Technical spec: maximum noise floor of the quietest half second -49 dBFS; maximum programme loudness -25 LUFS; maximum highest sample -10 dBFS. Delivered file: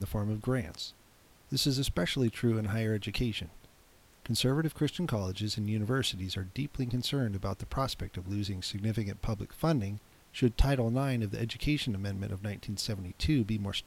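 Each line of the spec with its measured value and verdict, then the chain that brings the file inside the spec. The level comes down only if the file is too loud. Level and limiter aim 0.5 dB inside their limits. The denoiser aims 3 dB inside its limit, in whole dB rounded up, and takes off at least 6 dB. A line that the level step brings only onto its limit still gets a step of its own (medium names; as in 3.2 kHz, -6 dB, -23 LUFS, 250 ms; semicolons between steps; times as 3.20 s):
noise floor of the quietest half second -61 dBFS: pass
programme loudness -32.5 LUFS: pass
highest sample -12.0 dBFS: pass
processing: none needed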